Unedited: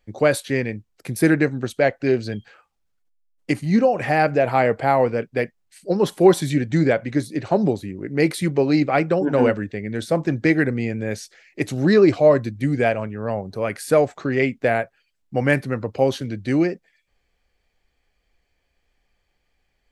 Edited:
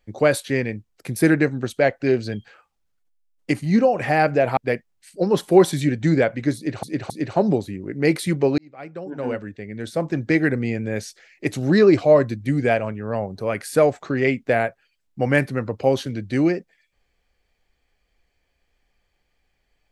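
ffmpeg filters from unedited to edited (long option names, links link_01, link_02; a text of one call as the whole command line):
ffmpeg -i in.wav -filter_complex "[0:a]asplit=5[link_01][link_02][link_03][link_04][link_05];[link_01]atrim=end=4.572[link_06];[link_02]atrim=start=5.258:end=7.522[link_07];[link_03]atrim=start=7.248:end=7.522[link_08];[link_04]atrim=start=7.248:end=8.73,asetpts=PTS-STARTPTS,afade=type=out:start_time=1.478:duration=0.004:curve=hsin[link_09];[link_05]atrim=start=8.73,asetpts=PTS-STARTPTS,afade=type=in:duration=2.03[link_10];[link_06][link_07]acrossfade=duration=0.004:curve1=hsin:curve2=hsin[link_11];[link_11][link_08]acrossfade=duration=0.004:curve1=hsin:curve2=hsin[link_12];[link_09][link_10]concat=n=2:v=0:a=1[link_13];[link_12][link_13]acrossfade=duration=0.004:curve1=hsin:curve2=hsin" out.wav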